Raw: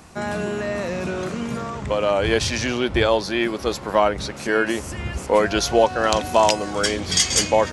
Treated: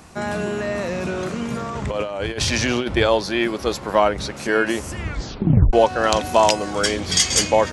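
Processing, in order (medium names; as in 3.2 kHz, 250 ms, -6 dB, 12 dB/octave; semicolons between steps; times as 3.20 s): 1.75–2.97 s: compressor with a negative ratio -23 dBFS, ratio -0.5; 5.00 s: tape stop 0.73 s; trim +1 dB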